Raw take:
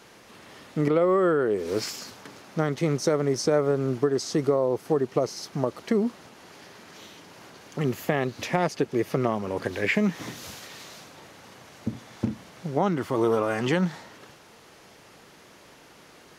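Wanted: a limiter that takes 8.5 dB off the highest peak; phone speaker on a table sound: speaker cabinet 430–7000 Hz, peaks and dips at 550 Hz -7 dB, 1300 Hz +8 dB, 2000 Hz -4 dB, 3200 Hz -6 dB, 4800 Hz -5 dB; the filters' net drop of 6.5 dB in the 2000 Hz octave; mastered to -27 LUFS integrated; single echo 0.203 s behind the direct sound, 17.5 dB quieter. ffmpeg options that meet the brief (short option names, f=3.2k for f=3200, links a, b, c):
-af "equalizer=f=2k:t=o:g=-8.5,alimiter=limit=-18.5dB:level=0:latency=1,highpass=f=430:w=0.5412,highpass=f=430:w=1.3066,equalizer=f=550:t=q:w=4:g=-7,equalizer=f=1.3k:t=q:w=4:g=8,equalizer=f=2k:t=q:w=4:g=-4,equalizer=f=3.2k:t=q:w=4:g=-6,equalizer=f=4.8k:t=q:w=4:g=-5,lowpass=f=7k:w=0.5412,lowpass=f=7k:w=1.3066,aecho=1:1:203:0.133,volume=7.5dB"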